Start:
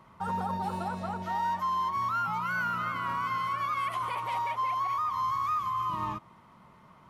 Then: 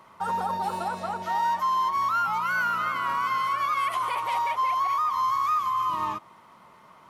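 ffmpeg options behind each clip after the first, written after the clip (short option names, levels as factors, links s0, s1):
-af "bass=f=250:g=-12,treble=f=4000:g=3,volume=1.78"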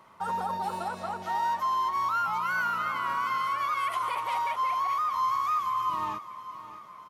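-af "aecho=1:1:613|1226|1839|2452|3065:0.178|0.096|0.0519|0.028|0.0151,volume=0.708"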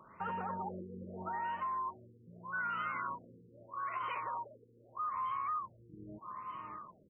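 -af "equalizer=f=810:w=1.6:g=-8,acompressor=threshold=0.0126:ratio=3,afftfilt=real='re*lt(b*sr/1024,480*pow(3200/480,0.5+0.5*sin(2*PI*0.8*pts/sr)))':imag='im*lt(b*sr/1024,480*pow(3200/480,0.5+0.5*sin(2*PI*0.8*pts/sr)))':win_size=1024:overlap=0.75,volume=1.19"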